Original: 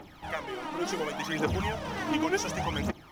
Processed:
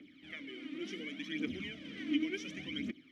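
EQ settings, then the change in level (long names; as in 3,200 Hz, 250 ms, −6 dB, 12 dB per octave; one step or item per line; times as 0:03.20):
formant filter i
low-pass filter 12,000 Hz
high-shelf EQ 7,900 Hz +10 dB
+3.5 dB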